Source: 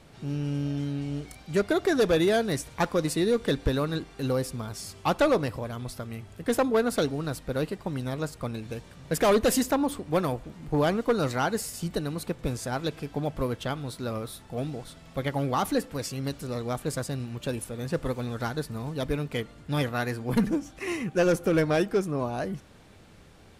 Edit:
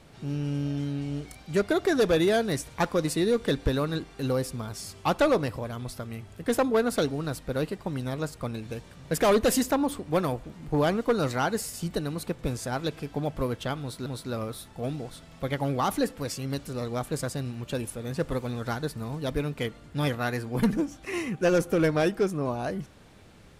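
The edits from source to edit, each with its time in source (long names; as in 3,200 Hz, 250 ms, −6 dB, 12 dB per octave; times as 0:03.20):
0:13.80–0:14.06: repeat, 2 plays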